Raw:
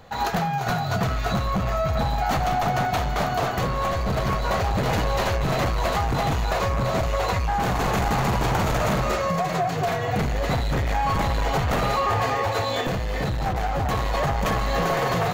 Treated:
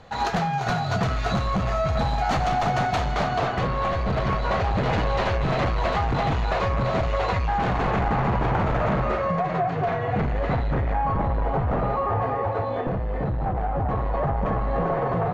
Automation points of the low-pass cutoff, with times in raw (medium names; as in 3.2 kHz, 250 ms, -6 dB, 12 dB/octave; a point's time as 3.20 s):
2.95 s 6.6 kHz
3.61 s 3.6 kHz
7.54 s 3.6 kHz
8.12 s 2 kHz
10.57 s 2 kHz
11.21 s 1.1 kHz